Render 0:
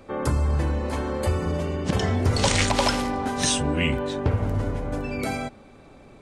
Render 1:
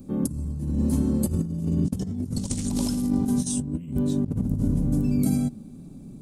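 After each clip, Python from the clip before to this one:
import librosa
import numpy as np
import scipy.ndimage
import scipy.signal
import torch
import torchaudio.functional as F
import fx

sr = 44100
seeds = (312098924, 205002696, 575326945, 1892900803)

y = fx.curve_eq(x, sr, hz=(100.0, 170.0, 260.0, 470.0, 2000.0, 12000.0), db=(0, 12, 6, -12, -23, 9))
y = fx.over_compress(y, sr, threshold_db=-24.0, ratio=-0.5)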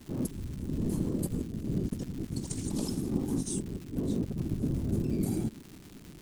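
y = fx.whisperise(x, sr, seeds[0])
y = fx.dmg_crackle(y, sr, seeds[1], per_s=360.0, level_db=-33.0)
y = y * 10.0 ** (-7.5 / 20.0)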